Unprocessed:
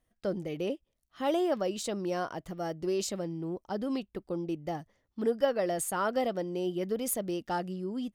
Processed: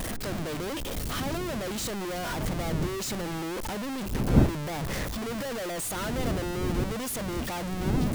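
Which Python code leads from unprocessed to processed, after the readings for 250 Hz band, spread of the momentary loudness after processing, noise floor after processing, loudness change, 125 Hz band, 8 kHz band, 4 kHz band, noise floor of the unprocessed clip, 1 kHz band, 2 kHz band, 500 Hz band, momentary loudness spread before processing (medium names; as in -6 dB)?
+3.5 dB, 6 LU, -33 dBFS, +2.5 dB, +12.5 dB, +3.5 dB, +6.5 dB, -78 dBFS, +0.5 dB, +6.5 dB, -2.5 dB, 9 LU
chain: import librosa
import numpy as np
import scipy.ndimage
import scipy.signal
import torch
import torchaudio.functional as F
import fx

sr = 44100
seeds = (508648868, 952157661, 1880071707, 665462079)

y = np.sign(x) * np.sqrt(np.mean(np.square(x)))
y = fx.dmg_wind(y, sr, seeds[0], corner_hz=210.0, level_db=-32.0)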